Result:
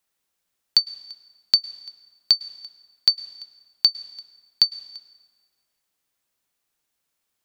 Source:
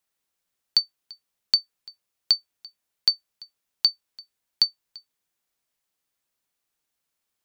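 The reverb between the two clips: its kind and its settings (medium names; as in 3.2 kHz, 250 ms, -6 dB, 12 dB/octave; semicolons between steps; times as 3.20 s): plate-style reverb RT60 1.7 s, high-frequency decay 0.7×, pre-delay 95 ms, DRR 18 dB; trim +3 dB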